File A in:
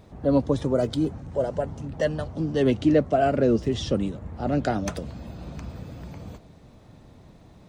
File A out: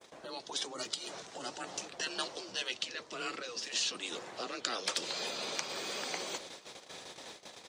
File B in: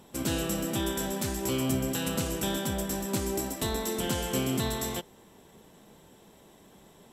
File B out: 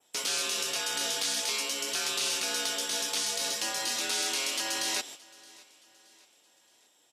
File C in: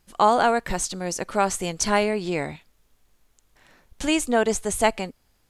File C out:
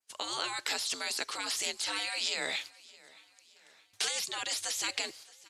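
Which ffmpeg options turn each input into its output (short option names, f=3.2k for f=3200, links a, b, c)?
-af "afreqshift=-110,agate=range=-22dB:threshold=-49dB:ratio=16:detection=peak,adynamicequalizer=threshold=0.00631:dfrequency=4300:dqfactor=1:tfrequency=4300:tqfactor=1:attack=5:release=100:ratio=0.375:range=3:mode=boostabove:tftype=bell,areverse,acompressor=threshold=-33dB:ratio=4,areverse,alimiter=level_in=6.5dB:limit=-24dB:level=0:latency=1:release=271,volume=-6.5dB,acontrast=83,crystalizer=i=7.5:c=0,afftfilt=real='re*lt(hypot(re,im),0.112)':imag='im*lt(hypot(re,im),0.112)':win_size=1024:overlap=0.75,highpass=380,lowpass=6.5k,aecho=1:1:621|1242|1863:0.0708|0.0326|0.015"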